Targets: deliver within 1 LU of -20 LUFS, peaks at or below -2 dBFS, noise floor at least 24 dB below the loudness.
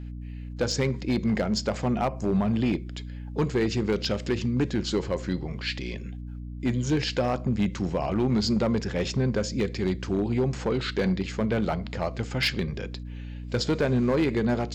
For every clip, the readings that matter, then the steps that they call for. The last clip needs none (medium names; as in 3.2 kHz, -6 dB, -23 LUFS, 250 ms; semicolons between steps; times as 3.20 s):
clipped samples 1.4%; clipping level -18.0 dBFS; hum 60 Hz; highest harmonic 300 Hz; hum level -35 dBFS; loudness -27.0 LUFS; peak level -18.0 dBFS; loudness target -20.0 LUFS
-> clip repair -18 dBFS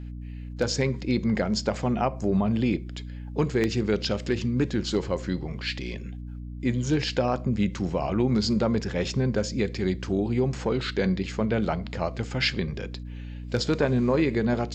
clipped samples 0.0%; hum 60 Hz; highest harmonic 300 Hz; hum level -34 dBFS
-> de-hum 60 Hz, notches 5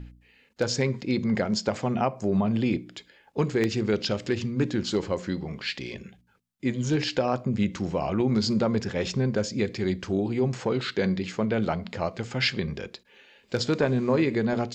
hum not found; loudness -27.0 LUFS; peak level -9.5 dBFS; loudness target -20.0 LUFS
-> trim +7 dB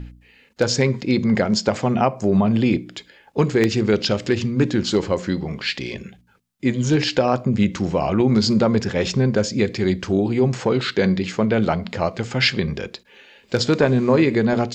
loudness -20.0 LUFS; peak level -2.5 dBFS; noise floor -55 dBFS